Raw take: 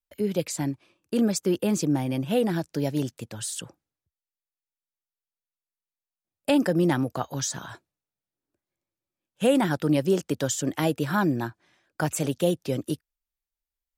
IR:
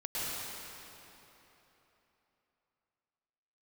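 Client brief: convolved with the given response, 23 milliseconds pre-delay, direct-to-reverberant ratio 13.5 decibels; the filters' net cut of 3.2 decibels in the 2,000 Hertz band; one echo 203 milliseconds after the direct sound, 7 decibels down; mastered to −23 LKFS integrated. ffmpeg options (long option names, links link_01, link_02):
-filter_complex "[0:a]equalizer=frequency=2000:width_type=o:gain=-4.5,aecho=1:1:203:0.447,asplit=2[link_01][link_02];[1:a]atrim=start_sample=2205,adelay=23[link_03];[link_02][link_03]afir=irnorm=-1:irlink=0,volume=-19.5dB[link_04];[link_01][link_04]amix=inputs=2:normalize=0,volume=3dB"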